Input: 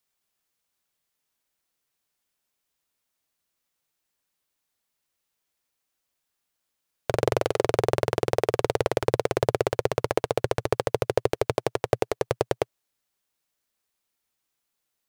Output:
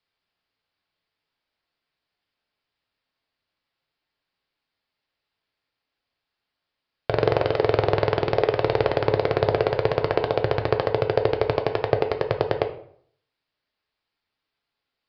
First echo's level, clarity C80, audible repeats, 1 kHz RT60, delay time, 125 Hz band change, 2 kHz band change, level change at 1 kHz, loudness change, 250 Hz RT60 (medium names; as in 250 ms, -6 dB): no echo, 15.0 dB, no echo, 0.60 s, no echo, +4.0 dB, +3.5 dB, +3.5 dB, +3.5 dB, 0.65 s